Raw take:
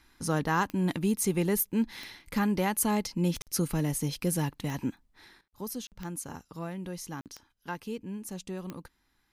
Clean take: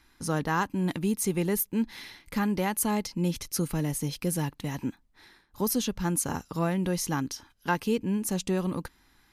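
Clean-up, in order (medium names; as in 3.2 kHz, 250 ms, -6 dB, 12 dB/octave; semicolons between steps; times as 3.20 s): de-click; interpolate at 3.42/5.48/5.87/7.21 s, 48 ms; gain correction +10 dB, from 5.41 s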